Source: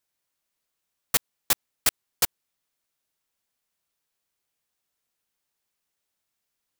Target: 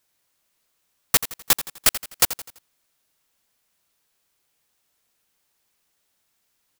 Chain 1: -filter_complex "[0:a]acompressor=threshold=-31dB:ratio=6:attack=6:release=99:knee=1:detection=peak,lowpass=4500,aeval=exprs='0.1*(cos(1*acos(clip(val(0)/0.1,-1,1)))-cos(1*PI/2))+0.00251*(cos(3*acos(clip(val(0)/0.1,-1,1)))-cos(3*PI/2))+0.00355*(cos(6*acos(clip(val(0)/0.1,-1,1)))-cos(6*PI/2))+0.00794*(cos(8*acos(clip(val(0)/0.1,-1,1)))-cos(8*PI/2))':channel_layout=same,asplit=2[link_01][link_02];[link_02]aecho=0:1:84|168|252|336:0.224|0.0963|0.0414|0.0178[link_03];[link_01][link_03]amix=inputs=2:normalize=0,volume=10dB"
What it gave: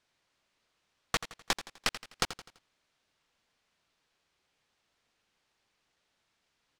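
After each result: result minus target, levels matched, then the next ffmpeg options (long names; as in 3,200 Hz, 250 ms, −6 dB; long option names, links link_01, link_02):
downward compressor: peak gain reduction +9.5 dB; 4,000 Hz band +4.5 dB
-filter_complex "[0:a]acompressor=threshold=-19.5dB:ratio=6:attack=6:release=99:knee=1:detection=peak,lowpass=4500,aeval=exprs='0.1*(cos(1*acos(clip(val(0)/0.1,-1,1)))-cos(1*PI/2))+0.00251*(cos(3*acos(clip(val(0)/0.1,-1,1)))-cos(3*PI/2))+0.00355*(cos(6*acos(clip(val(0)/0.1,-1,1)))-cos(6*PI/2))+0.00794*(cos(8*acos(clip(val(0)/0.1,-1,1)))-cos(8*PI/2))':channel_layout=same,asplit=2[link_01][link_02];[link_02]aecho=0:1:84|168|252|336:0.224|0.0963|0.0414|0.0178[link_03];[link_01][link_03]amix=inputs=2:normalize=0,volume=10dB"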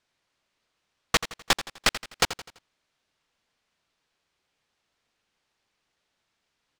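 4,000 Hz band +5.0 dB
-filter_complex "[0:a]acompressor=threshold=-19.5dB:ratio=6:attack=6:release=99:knee=1:detection=peak,aeval=exprs='0.1*(cos(1*acos(clip(val(0)/0.1,-1,1)))-cos(1*PI/2))+0.00251*(cos(3*acos(clip(val(0)/0.1,-1,1)))-cos(3*PI/2))+0.00355*(cos(6*acos(clip(val(0)/0.1,-1,1)))-cos(6*PI/2))+0.00794*(cos(8*acos(clip(val(0)/0.1,-1,1)))-cos(8*PI/2))':channel_layout=same,asplit=2[link_01][link_02];[link_02]aecho=0:1:84|168|252|336:0.224|0.0963|0.0414|0.0178[link_03];[link_01][link_03]amix=inputs=2:normalize=0,volume=10dB"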